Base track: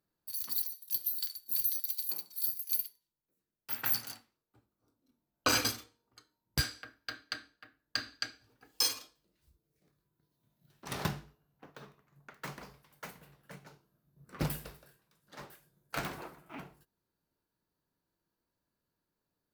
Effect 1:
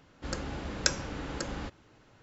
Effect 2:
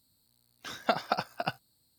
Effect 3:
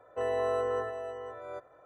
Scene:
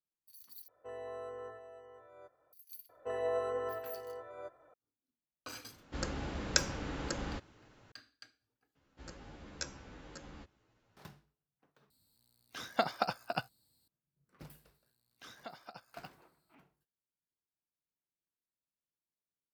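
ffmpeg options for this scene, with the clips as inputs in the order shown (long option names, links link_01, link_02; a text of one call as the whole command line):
ffmpeg -i bed.wav -i cue0.wav -i cue1.wav -i cue2.wav -filter_complex "[3:a]asplit=2[link_01][link_02];[1:a]asplit=2[link_03][link_04];[2:a]asplit=2[link_05][link_06];[0:a]volume=-19dB[link_07];[link_02]flanger=delay=2.9:depth=3.3:regen=65:speed=1.2:shape=sinusoidal[link_08];[link_04]asplit=2[link_09][link_10];[link_10]adelay=11.3,afreqshift=-1.2[link_11];[link_09][link_11]amix=inputs=2:normalize=1[link_12];[link_06]alimiter=limit=-22.5dB:level=0:latency=1:release=337[link_13];[link_07]asplit=4[link_14][link_15][link_16][link_17];[link_14]atrim=end=0.684[link_18];[link_01]atrim=end=1.85,asetpts=PTS-STARTPTS,volume=-14.5dB[link_19];[link_15]atrim=start=2.526:end=8.754[link_20];[link_12]atrim=end=2.22,asetpts=PTS-STARTPTS,volume=-11dB[link_21];[link_16]atrim=start=10.966:end=11.904[link_22];[link_05]atrim=end=1.98,asetpts=PTS-STARTPTS,volume=-3.5dB[link_23];[link_17]atrim=start=13.876[link_24];[link_08]atrim=end=1.85,asetpts=PTS-STARTPTS,volume=-1.5dB,afade=type=in:duration=0.004:curve=hsin,afade=type=out:start_time=1.846:duration=0.004:curve=hsin,adelay=2890[link_25];[link_03]atrim=end=2.22,asetpts=PTS-STARTPTS,volume=-2dB,afade=type=in:duration=0.004:curve=hsin,afade=type=out:start_time=2.216:duration=0.004:curve=hsin,adelay=5700[link_26];[link_13]atrim=end=1.98,asetpts=PTS-STARTPTS,volume=-11.5dB,afade=type=in:duration=0.004:curve=hsin,afade=type=out:start_time=1.976:duration=0.004:curve=hsin,adelay=14570[link_27];[link_18][link_19]acrossfade=duration=0.004:curve1=hsin:curve2=hsin[link_28];[link_28][link_20]acrossfade=duration=0.004:curve1=hsin:curve2=hsin[link_29];[link_29][link_21]acrossfade=duration=0.004:curve1=hsin:curve2=hsin[link_30];[link_30][link_22]acrossfade=duration=0.004:curve1=hsin:curve2=hsin[link_31];[link_31][link_23]acrossfade=duration=0.004:curve1=hsin:curve2=hsin[link_32];[link_32][link_24]acrossfade=duration=0.004:curve1=hsin:curve2=hsin[link_33];[link_33][link_25][link_26][link_27]amix=inputs=4:normalize=0" out.wav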